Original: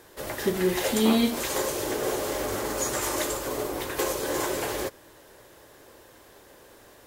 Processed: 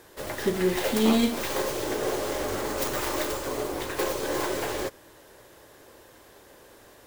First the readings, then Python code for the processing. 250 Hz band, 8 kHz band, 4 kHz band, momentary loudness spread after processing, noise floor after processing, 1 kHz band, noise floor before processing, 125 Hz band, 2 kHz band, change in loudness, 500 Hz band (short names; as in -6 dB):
0.0 dB, -4.5 dB, -1.0 dB, 8 LU, -53 dBFS, 0.0 dB, -53 dBFS, 0.0 dB, 0.0 dB, -0.5 dB, 0.0 dB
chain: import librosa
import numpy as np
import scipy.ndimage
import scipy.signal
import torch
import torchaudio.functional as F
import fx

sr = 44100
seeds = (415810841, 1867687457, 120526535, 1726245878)

y = fx.tracing_dist(x, sr, depth_ms=0.19)